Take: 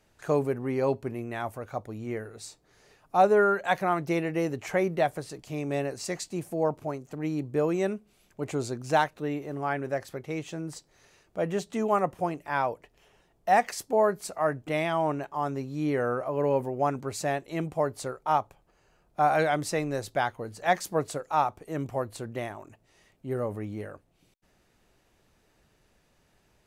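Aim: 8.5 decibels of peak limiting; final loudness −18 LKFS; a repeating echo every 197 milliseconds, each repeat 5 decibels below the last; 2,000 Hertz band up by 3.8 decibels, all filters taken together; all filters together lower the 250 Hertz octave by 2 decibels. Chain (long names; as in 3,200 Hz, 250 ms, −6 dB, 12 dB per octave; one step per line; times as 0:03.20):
parametric band 250 Hz −3 dB
parametric band 2,000 Hz +5 dB
brickwall limiter −17 dBFS
repeating echo 197 ms, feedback 56%, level −5 dB
level +11.5 dB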